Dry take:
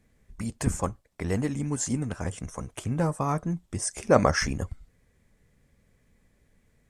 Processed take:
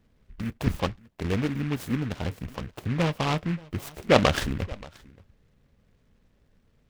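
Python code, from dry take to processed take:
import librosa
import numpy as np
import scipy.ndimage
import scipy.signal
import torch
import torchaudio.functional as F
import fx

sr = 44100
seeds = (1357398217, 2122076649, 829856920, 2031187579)

y = fx.band_shelf(x, sr, hz=4700.0, db=-12.5, octaves=2.4)
y = y + 10.0 ** (-23.0 / 20.0) * np.pad(y, (int(578 * sr / 1000.0), 0))[:len(y)]
y = fx.noise_mod_delay(y, sr, seeds[0], noise_hz=1700.0, depth_ms=0.12)
y = F.gain(torch.from_numpy(y), 1.0).numpy()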